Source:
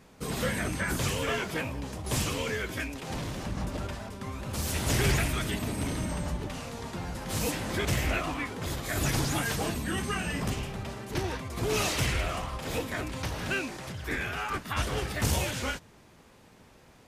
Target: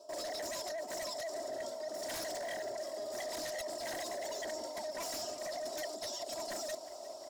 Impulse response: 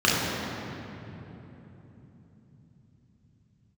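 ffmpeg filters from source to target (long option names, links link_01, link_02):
-filter_complex "[0:a]asplit=3[link_01][link_02][link_03];[link_01]bandpass=frequency=270:width_type=q:width=8,volume=0dB[link_04];[link_02]bandpass=frequency=2290:width_type=q:width=8,volume=-6dB[link_05];[link_03]bandpass=frequency=3010:width_type=q:width=8,volume=-9dB[link_06];[link_04][link_05][link_06]amix=inputs=3:normalize=0,asplit=2[link_07][link_08];[link_08]acrusher=bits=4:mode=log:mix=0:aa=0.000001,volume=-7.5dB[link_09];[link_07][link_09]amix=inputs=2:normalize=0,aecho=1:1:7.2:0.94,asetrate=103194,aresample=44100,aeval=exprs='0.0944*sin(PI/2*4.47*val(0)/0.0944)':channel_layout=same,areverse,acompressor=threshold=-36dB:ratio=10,areverse,asplit=7[link_10][link_11][link_12][link_13][link_14][link_15][link_16];[link_11]adelay=359,afreqshift=41,volume=-17dB[link_17];[link_12]adelay=718,afreqshift=82,volume=-20.9dB[link_18];[link_13]adelay=1077,afreqshift=123,volume=-24.8dB[link_19];[link_14]adelay=1436,afreqshift=164,volume=-28.6dB[link_20];[link_15]adelay=1795,afreqshift=205,volume=-32.5dB[link_21];[link_16]adelay=2154,afreqshift=246,volume=-36.4dB[link_22];[link_10][link_17][link_18][link_19][link_20][link_21][link_22]amix=inputs=7:normalize=0,volume=-3dB"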